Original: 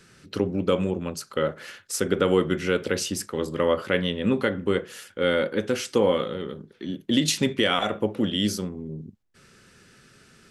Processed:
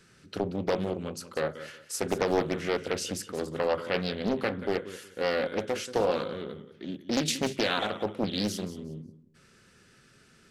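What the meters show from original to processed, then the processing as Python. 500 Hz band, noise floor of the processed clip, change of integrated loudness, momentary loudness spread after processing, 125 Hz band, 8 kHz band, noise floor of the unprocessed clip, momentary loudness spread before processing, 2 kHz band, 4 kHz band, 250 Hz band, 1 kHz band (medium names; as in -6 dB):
-5.0 dB, -60 dBFS, -5.5 dB, 13 LU, -6.5 dB, -5.5 dB, -56 dBFS, 12 LU, -5.0 dB, -6.0 dB, -6.5 dB, -2.5 dB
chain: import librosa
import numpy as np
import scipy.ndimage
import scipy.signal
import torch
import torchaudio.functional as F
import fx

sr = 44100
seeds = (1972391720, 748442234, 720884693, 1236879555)

y = fx.echo_feedback(x, sr, ms=182, feedback_pct=23, wet_db=-14.0)
y = fx.doppler_dist(y, sr, depth_ms=0.74)
y = y * librosa.db_to_amplitude(-5.0)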